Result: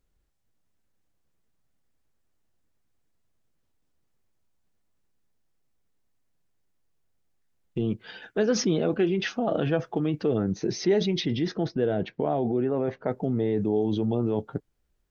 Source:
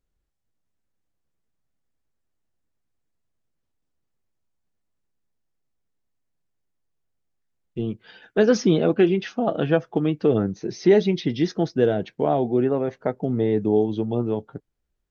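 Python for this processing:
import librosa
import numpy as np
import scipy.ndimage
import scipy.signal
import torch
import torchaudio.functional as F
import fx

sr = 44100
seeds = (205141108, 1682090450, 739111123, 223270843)

p1 = fx.over_compress(x, sr, threshold_db=-29.0, ratio=-1.0)
p2 = x + (p1 * 10.0 ** (2.0 / 20.0))
p3 = fx.air_absorb(p2, sr, metres=160.0, at=(11.3, 13.08))
y = p3 * 10.0 ** (-7.5 / 20.0)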